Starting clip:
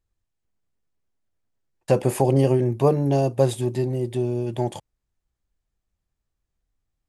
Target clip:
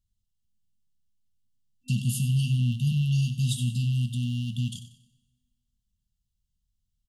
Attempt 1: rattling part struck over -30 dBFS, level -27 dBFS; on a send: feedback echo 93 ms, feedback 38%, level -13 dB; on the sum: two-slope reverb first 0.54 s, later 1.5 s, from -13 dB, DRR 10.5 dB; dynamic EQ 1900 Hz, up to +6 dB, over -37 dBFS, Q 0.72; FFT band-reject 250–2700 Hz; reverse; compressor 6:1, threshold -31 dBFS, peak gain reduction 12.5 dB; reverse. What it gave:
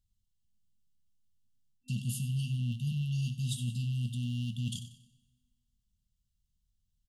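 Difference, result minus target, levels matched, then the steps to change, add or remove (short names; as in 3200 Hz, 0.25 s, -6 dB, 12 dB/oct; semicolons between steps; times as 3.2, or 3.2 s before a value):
compressor: peak gain reduction +8.5 dB
change: compressor 6:1, threshold -20.5 dBFS, peak gain reduction 4 dB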